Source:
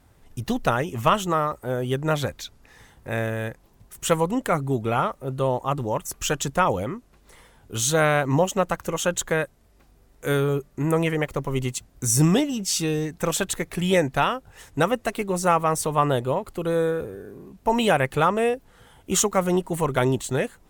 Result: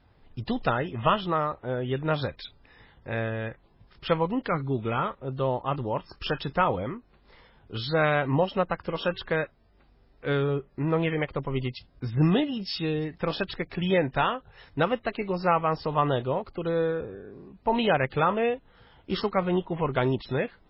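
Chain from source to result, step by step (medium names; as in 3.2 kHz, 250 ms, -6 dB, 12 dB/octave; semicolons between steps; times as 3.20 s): 4.34–5.12 s: dynamic bell 700 Hz, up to -6 dB, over -38 dBFS, Q 2.8; 8.82–9.26 s: de-hum 382.5 Hz, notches 7; trim -3 dB; MP3 16 kbps 12 kHz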